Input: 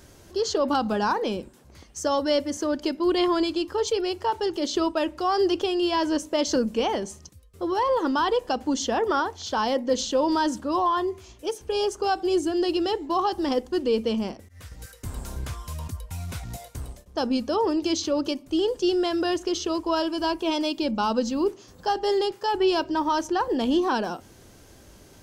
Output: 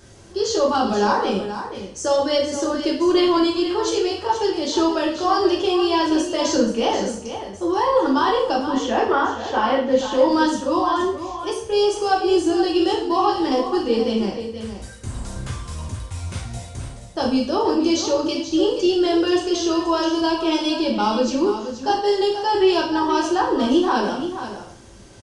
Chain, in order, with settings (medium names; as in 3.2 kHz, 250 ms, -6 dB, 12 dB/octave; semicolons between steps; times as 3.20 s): 8.66–10.12 s: resonant high shelf 3.5 kHz -8.5 dB, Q 1.5; delay 478 ms -10 dB; two-slope reverb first 0.5 s, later 1.6 s, from -24 dB, DRR -2.5 dB; resampled via 22.05 kHz